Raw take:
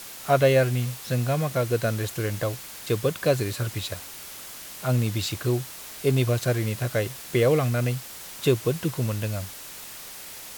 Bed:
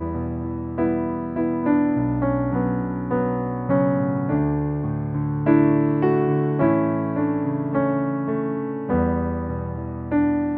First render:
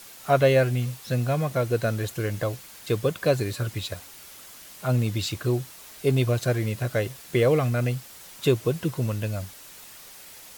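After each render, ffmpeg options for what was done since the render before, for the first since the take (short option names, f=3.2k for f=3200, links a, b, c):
-af "afftdn=nr=6:nf=-41"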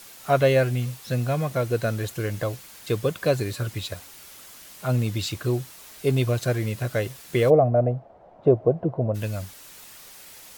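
-filter_complex "[0:a]asplit=3[a][b][c];[a]afade=t=out:st=7.49:d=0.02[d];[b]lowpass=f=670:t=q:w=5.4,afade=t=in:st=7.49:d=0.02,afade=t=out:st=9.14:d=0.02[e];[c]afade=t=in:st=9.14:d=0.02[f];[d][e][f]amix=inputs=3:normalize=0"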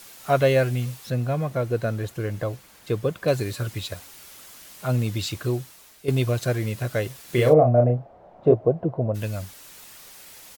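-filter_complex "[0:a]asettb=1/sr,asplit=3[a][b][c];[a]atrim=end=1.104[d];[b]atrim=start=1.1:end=3.28,asetpts=PTS-STARTPTS,afade=t=in:d=0.004:c=qsin,afade=t=out:st=2.176:d=0.004:c=qsin,highshelf=f=2.2k:g=-8[e];[c]atrim=start=3.276[f];[d][e]acrossfade=d=0.004:c1=hsin:c2=qsin[g];[g][f]acrossfade=d=0.004:c1=qsin:c2=hsin,asplit=3[h][i][j];[h]afade=t=out:st=7.27:d=0.02[k];[i]asplit=2[l][m];[m]adelay=33,volume=-4dB[n];[l][n]amix=inputs=2:normalize=0,afade=t=in:st=7.27:d=0.02,afade=t=out:st=8.53:d=0.02[o];[j]afade=t=in:st=8.53:d=0.02[p];[k][o][p]amix=inputs=3:normalize=0,asplit=2[q][r];[q]atrim=end=6.08,asetpts=PTS-STARTPTS,afade=t=out:st=5.43:d=0.65:silence=0.298538[s];[r]atrim=start=6.08,asetpts=PTS-STARTPTS,afade=t=in:d=0.004:c=hsin:silence=0.298538[t];[s][t]concat=n=2:v=0:a=1"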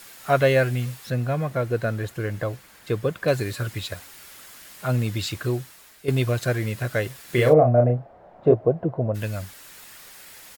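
-af "equalizer=f=1.7k:w=1.7:g=5,bandreject=f=6k:w=26"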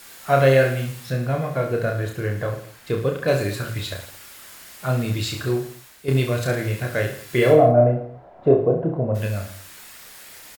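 -af "aecho=1:1:30|66|109.2|161|223.2:0.631|0.398|0.251|0.158|0.1"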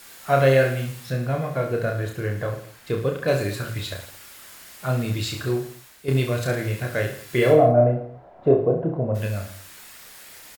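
-af "volume=-1.5dB"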